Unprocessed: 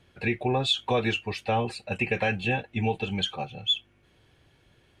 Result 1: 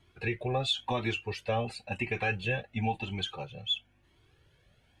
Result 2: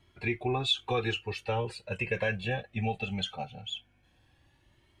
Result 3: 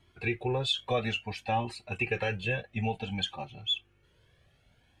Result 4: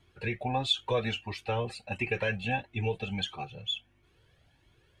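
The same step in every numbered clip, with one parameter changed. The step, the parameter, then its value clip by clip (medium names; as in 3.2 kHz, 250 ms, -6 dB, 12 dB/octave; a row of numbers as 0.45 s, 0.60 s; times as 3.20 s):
Shepard-style flanger, rate: 0.97 Hz, 0.2 Hz, 0.57 Hz, 1.5 Hz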